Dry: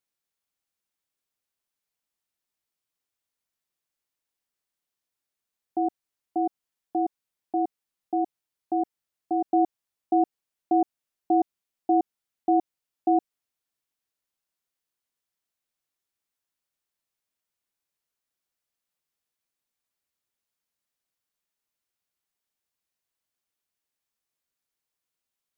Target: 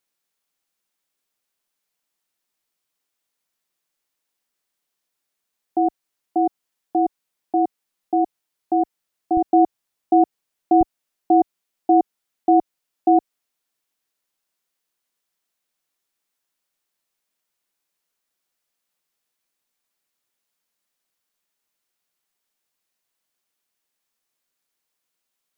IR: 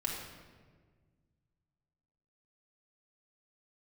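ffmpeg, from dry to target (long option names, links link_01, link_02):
-af "asetnsamples=nb_out_samples=441:pad=0,asendcmd='9.37 equalizer g -6;10.81 equalizer g -15',equalizer=frequency=64:width_type=o:width=1.3:gain=-14,volume=7dB"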